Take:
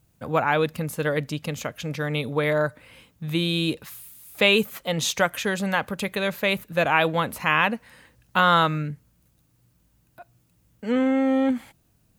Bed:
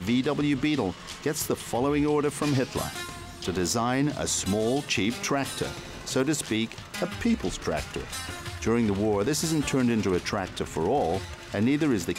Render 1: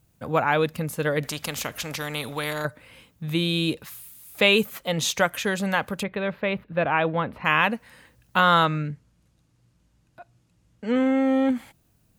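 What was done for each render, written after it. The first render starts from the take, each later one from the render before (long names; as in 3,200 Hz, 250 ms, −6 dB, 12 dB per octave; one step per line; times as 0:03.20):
0:01.23–0:02.65: every bin compressed towards the loudest bin 2 to 1
0:06.03–0:07.45: high-frequency loss of the air 410 metres
0:08.65–0:10.95: low-pass filter 7,400 Hz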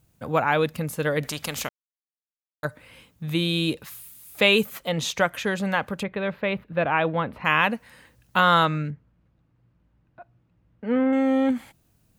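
0:01.69–0:02.63: silence
0:04.89–0:06.23: high-shelf EQ 5,300 Hz −8 dB
0:08.90–0:11.13: low-pass filter 2,000 Hz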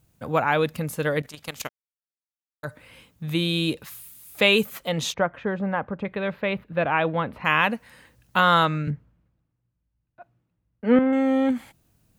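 0:01.20–0:02.68: output level in coarse steps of 15 dB
0:05.14–0:06.05: low-pass filter 1,300 Hz
0:08.87–0:10.99: multiband upward and downward expander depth 70%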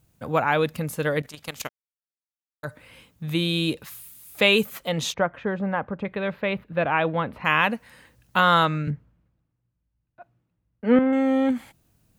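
no processing that can be heard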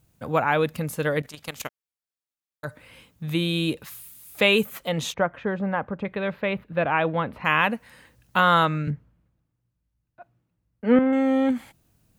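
dynamic equaliser 4,900 Hz, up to −5 dB, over −40 dBFS, Q 1.5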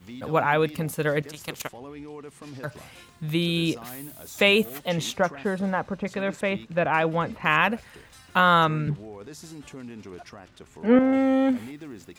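mix in bed −16 dB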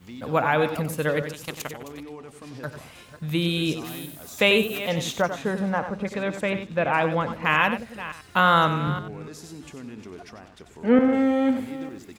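delay that plays each chunk backwards 290 ms, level −13.5 dB
single-tap delay 93 ms −10 dB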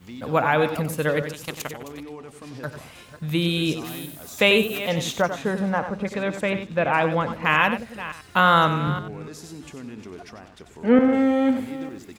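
level +1.5 dB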